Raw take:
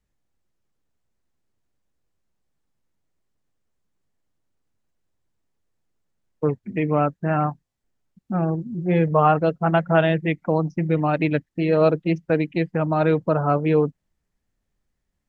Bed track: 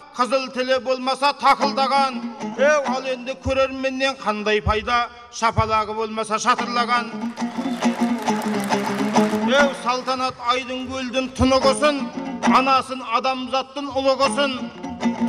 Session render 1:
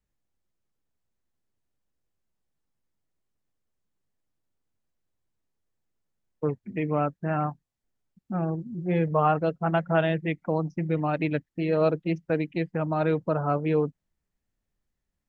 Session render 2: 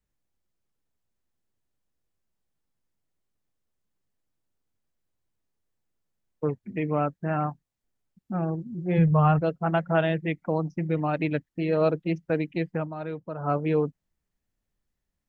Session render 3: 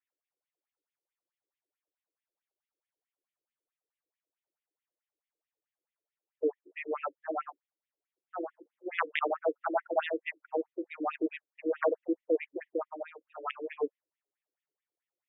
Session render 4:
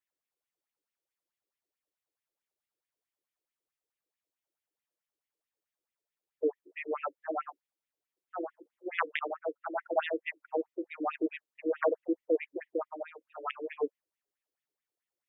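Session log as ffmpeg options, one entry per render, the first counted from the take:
-af "volume=0.531"
-filter_complex "[0:a]asplit=3[s0][s1][s2];[s0]afade=t=out:st=8.97:d=0.02[s3];[s1]asubboost=boost=8.5:cutoff=120,afade=t=in:st=8.97:d=0.02,afade=t=out:st=9.4:d=0.02[s4];[s2]afade=t=in:st=9.4:d=0.02[s5];[s3][s4][s5]amix=inputs=3:normalize=0,asplit=3[s6][s7][s8];[s6]atrim=end=12.9,asetpts=PTS-STARTPTS,afade=t=out:st=12.78:d=0.12:silence=0.334965[s9];[s7]atrim=start=12.9:end=13.37,asetpts=PTS-STARTPTS,volume=0.335[s10];[s8]atrim=start=13.37,asetpts=PTS-STARTPTS,afade=t=in:d=0.12:silence=0.334965[s11];[s9][s10][s11]concat=n=3:v=0:a=1"
-af "aeval=exprs='(mod(4.22*val(0)+1,2)-1)/4.22':c=same,afftfilt=real='re*between(b*sr/1024,380*pow(2700/380,0.5+0.5*sin(2*PI*4.6*pts/sr))/1.41,380*pow(2700/380,0.5+0.5*sin(2*PI*4.6*pts/sr))*1.41)':imag='im*between(b*sr/1024,380*pow(2700/380,0.5+0.5*sin(2*PI*4.6*pts/sr))/1.41,380*pow(2700/380,0.5+0.5*sin(2*PI*4.6*pts/sr))*1.41)':win_size=1024:overlap=0.75"
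-filter_complex "[0:a]asplit=3[s0][s1][s2];[s0]atrim=end=9.172[s3];[s1]atrim=start=9.168:end=9.782,asetpts=PTS-STARTPTS,volume=0.531[s4];[s2]atrim=start=9.778[s5];[s3][s4]acrossfade=d=0.004:c1=hsin:c2=hsin[s6];[s6][s5]acrossfade=d=0.004:c1=hsin:c2=hsin"

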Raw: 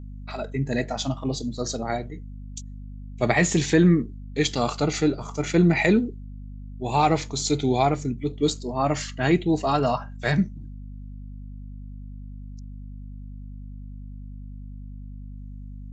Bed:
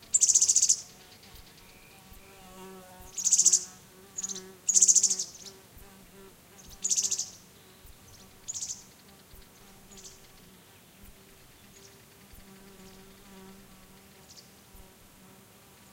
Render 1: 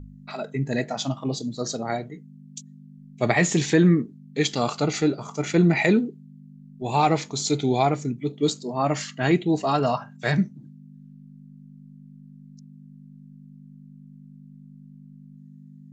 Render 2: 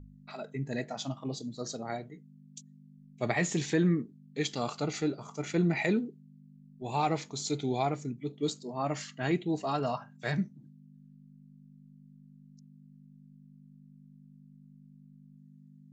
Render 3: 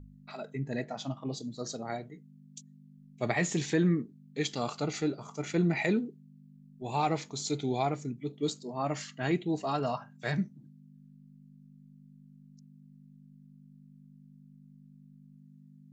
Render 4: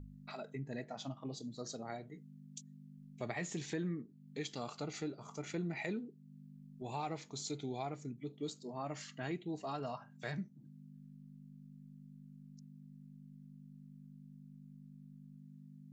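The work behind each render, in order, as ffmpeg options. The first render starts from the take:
-af "bandreject=f=50:t=h:w=4,bandreject=f=100:t=h:w=4"
-af "volume=0.355"
-filter_complex "[0:a]asettb=1/sr,asplit=3[s0][s1][s2];[s0]atrim=end=0.604[s3];[s1]atrim=start=0.6:end=1.28,asetpts=PTS-STARTPTS,afade=t=in:d=0.004:c=qsin,afade=t=out:st=0.676:d=0.004:c=qsin,aemphasis=mode=reproduction:type=cd[s4];[s2]atrim=start=1.276[s5];[s3][s4]acrossfade=d=0.004:c1=hsin:c2=qsin[s6];[s6][s5]acrossfade=d=0.004:c1=qsin:c2=hsin"
-af "acompressor=threshold=0.00501:ratio=2"

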